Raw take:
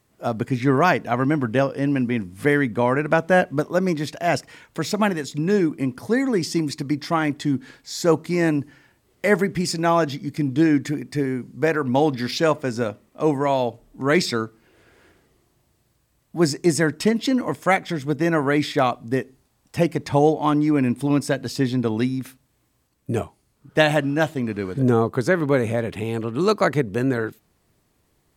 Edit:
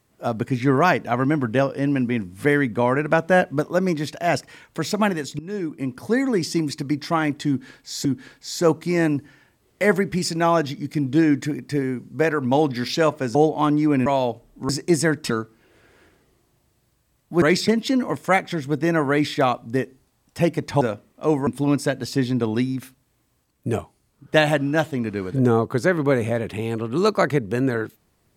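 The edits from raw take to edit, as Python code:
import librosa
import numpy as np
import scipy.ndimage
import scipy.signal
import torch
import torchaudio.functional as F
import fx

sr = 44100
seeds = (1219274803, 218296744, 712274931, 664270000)

y = fx.edit(x, sr, fx.fade_in_from(start_s=5.39, length_s=0.69, floor_db=-18.0),
    fx.repeat(start_s=7.48, length_s=0.57, count=2),
    fx.swap(start_s=12.78, length_s=0.66, other_s=20.19, other_length_s=0.71),
    fx.swap(start_s=14.07, length_s=0.26, other_s=16.45, other_length_s=0.61), tone=tone)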